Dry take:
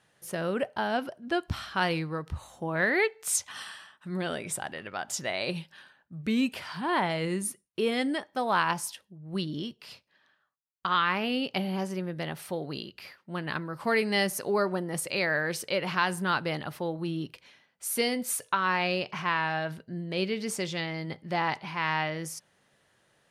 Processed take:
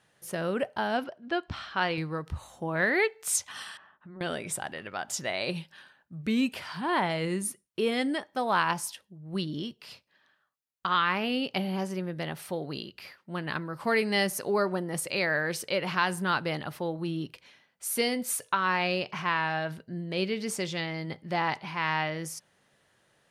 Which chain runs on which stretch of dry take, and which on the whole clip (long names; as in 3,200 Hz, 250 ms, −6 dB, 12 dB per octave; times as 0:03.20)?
0:01.04–0:01.98: low-pass filter 4,500 Hz + low-shelf EQ 220 Hz −7.5 dB
0:03.77–0:04.21: mains-hum notches 60/120/180/240/300/360/420/480/540/600 Hz + downward compressor 3 to 1, threshold −45 dBFS + low-pass filter 1,400 Hz
whole clip: no processing